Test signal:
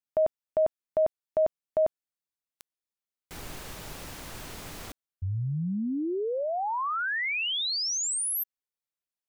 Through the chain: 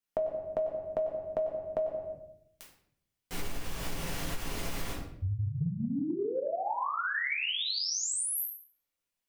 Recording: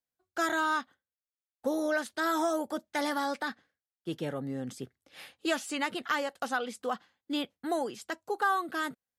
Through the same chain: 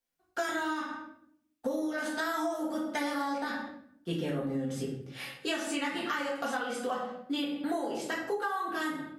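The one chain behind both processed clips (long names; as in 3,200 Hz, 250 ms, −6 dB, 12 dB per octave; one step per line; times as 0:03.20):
rectangular room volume 120 cubic metres, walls mixed, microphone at 1.7 metres
downward compressor 12 to 1, threshold −29 dBFS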